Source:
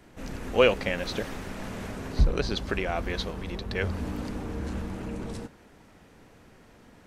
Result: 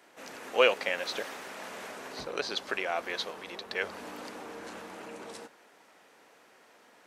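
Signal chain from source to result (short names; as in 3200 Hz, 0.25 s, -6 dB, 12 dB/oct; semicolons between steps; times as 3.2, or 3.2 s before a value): HPF 530 Hz 12 dB/oct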